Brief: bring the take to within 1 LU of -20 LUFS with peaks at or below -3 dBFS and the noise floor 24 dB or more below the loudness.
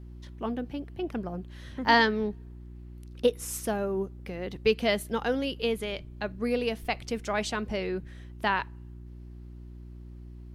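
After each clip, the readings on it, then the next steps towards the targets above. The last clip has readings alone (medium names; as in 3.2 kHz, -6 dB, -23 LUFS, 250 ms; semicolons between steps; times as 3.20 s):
hum 60 Hz; highest harmonic 360 Hz; hum level -42 dBFS; loudness -30.0 LUFS; peak level -9.0 dBFS; loudness target -20.0 LUFS
-> de-hum 60 Hz, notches 6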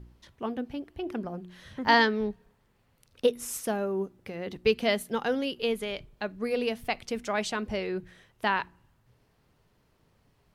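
hum not found; loudness -30.0 LUFS; peak level -9.0 dBFS; loudness target -20.0 LUFS
-> trim +10 dB; peak limiter -3 dBFS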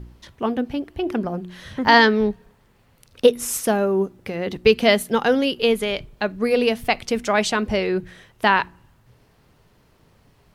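loudness -20.5 LUFS; peak level -3.0 dBFS; noise floor -59 dBFS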